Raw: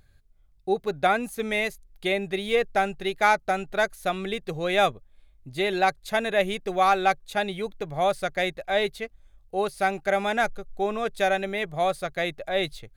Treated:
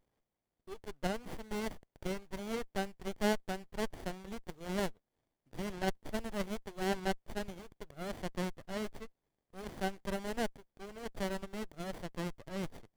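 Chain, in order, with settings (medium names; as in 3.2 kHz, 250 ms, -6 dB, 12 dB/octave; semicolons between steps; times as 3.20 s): differentiator; sliding maximum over 33 samples; trim +1.5 dB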